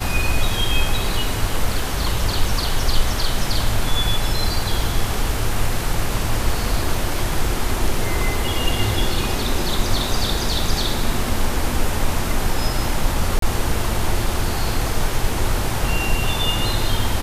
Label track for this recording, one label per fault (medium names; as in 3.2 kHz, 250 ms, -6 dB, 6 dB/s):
13.390000	13.420000	dropout 33 ms